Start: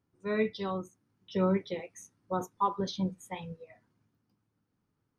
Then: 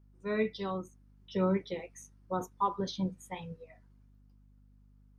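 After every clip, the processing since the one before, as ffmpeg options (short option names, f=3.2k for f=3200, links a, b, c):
-af "aeval=exprs='val(0)+0.00126*(sin(2*PI*50*n/s)+sin(2*PI*2*50*n/s)/2+sin(2*PI*3*50*n/s)/3+sin(2*PI*4*50*n/s)/4+sin(2*PI*5*50*n/s)/5)':c=same,volume=-1.5dB"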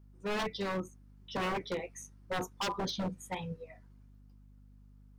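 -af "aeval=exprs='0.0266*(abs(mod(val(0)/0.0266+3,4)-2)-1)':c=same,volume=3.5dB"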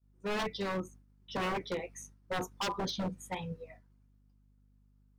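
-af "agate=range=-33dB:threshold=-50dB:ratio=3:detection=peak"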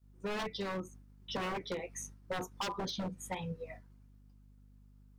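-af "acompressor=threshold=-44dB:ratio=3,volume=6dB"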